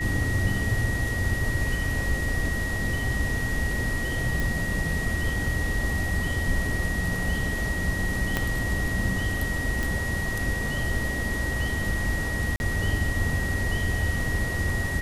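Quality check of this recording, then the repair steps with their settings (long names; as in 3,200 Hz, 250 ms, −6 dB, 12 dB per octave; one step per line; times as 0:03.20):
whistle 1,900 Hz −30 dBFS
0:04.40: click
0:08.37: click −10 dBFS
0:09.83: click
0:12.56–0:12.60: drop-out 41 ms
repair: click removal
notch filter 1,900 Hz, Q 30
repair the gap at 0:12.56, 41 ms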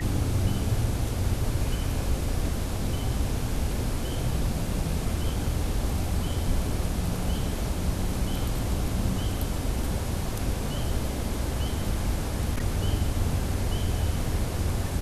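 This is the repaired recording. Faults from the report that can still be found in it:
0:08.37: click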